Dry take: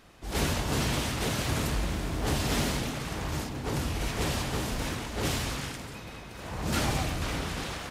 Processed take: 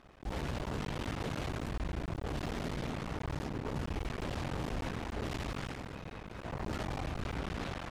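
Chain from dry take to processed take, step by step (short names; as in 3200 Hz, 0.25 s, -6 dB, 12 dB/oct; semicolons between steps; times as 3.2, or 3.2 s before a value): cycle switcher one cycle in 3, muted; LPF 1800 Hz 6 dB/oct; limiter -28 dBFS, peak gain reduction 11 dB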